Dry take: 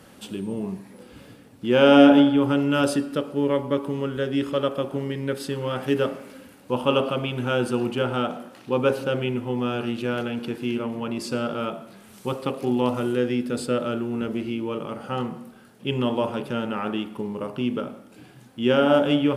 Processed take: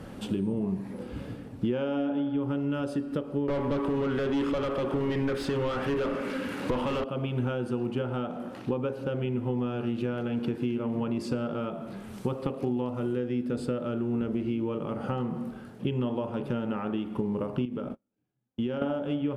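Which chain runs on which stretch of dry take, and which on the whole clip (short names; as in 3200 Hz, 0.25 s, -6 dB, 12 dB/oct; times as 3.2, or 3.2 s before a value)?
3.48–7.04 bell 710 Hz -8 dB 0.9 oct + overdrive pedal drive 30 dB, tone 3300 Hz, clips at -9.5 dBFS
17.65–18.82 compressor 5:1, threshold -32 dBFS + gate -38 dBFS, range -42 dB
whole clip: low shelf 330 Hz -3.5 dB; compressor 10:1, threshold -35 dBFS; tilt -3 dB/oct; gain +4 dB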